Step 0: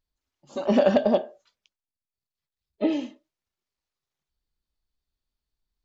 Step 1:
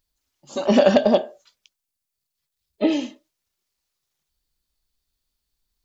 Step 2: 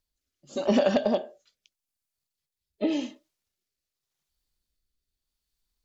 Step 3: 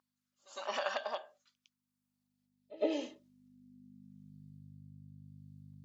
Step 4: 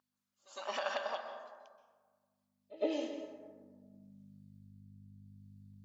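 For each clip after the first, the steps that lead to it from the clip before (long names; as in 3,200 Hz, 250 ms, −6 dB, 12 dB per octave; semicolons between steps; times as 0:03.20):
high-shelf EQ 3,600 Hz +10 dB; level +4 dB
downward compressor, threshold −15 dBFS, peak gain reduction 6 dB; rotating-speaker cabinet horn 0.85 Hz; level −2.5 dB
mains hum 50 Hz, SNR 14 dB; echo ahead of the sound 108 ms −19 dB; high-pass filter sweep 1,100 Hz → 130 Hz, 0:01.75–0:04.65; level −7 dB
dense smooth reverb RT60 1.5 s, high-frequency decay 0.4×, pre-delay 115 ms, DRR 6 dB; level −1.5 dB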